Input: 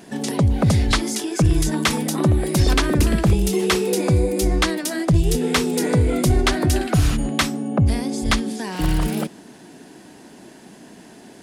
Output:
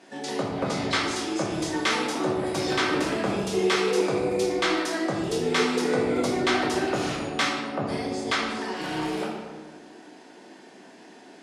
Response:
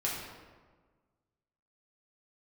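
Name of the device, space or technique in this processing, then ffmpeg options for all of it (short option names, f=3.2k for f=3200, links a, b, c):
supermarket ceiling speaker: -filter_complex "[0:a]highpass=340,lowpass=6.5k[a];[1:a]atrim=start_sample=2205[b];[a][b]afir=irnorm=-1:irlink=0,volume=-7dB"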